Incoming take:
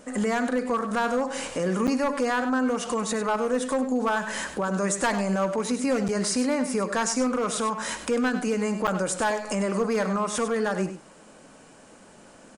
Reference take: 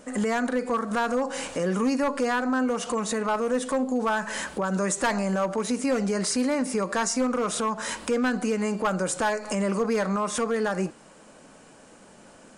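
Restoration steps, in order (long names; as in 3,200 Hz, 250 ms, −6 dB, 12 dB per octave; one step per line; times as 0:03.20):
repair the gap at 0:01.87/0:06.08/0:08.87, 7.9 ms
echo removal 98 ms −11 dB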